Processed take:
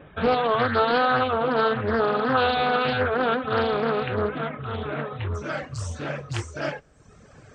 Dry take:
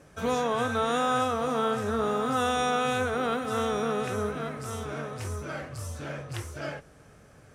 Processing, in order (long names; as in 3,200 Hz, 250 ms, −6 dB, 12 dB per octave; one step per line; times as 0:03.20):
reverb reduction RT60 1 s
linear-phase brick-wall low-pass 3,800 Hz, from 0:05.34 8,600 Hz
highs frequency-modulated by the lows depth 0.36 ms
level +7.5 dB